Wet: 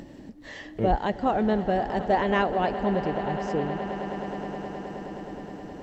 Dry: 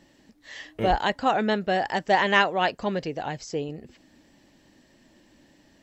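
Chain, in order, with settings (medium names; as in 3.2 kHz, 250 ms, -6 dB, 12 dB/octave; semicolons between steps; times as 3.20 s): tilt shelf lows +8 dB, about 1.1 kHz; upward compressor, threshold -27 dBFS; on a send: echo with a slow build-up 105 ms, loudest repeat 8, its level -17 dB; on the sum: trim -5 dB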